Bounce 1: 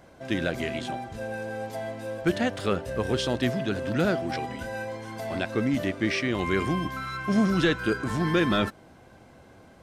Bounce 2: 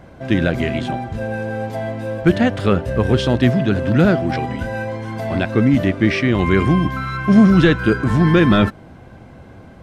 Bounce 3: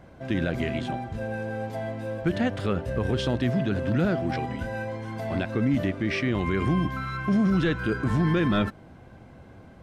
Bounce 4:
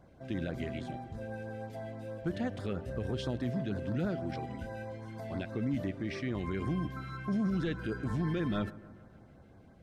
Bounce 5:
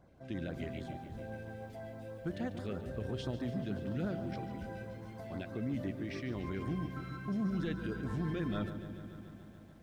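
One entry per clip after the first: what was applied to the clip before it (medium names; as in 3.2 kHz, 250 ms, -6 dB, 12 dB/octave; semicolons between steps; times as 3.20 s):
tone controls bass +7 dB, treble -8 dB; trim +8 dB
peak limiter -8 dBFS, peak gain reduction 6.5 dB; trim -7.5 dB
LFO notch sine 6.2 Hz 950–3000 Hz; bucket-brigade echo 144 ms, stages 2048, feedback 64%, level -19 dB; trim -9 dB
bit-crushed delay 144 ms, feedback 80%, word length 10-bit, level -13 dB; trim -4 dB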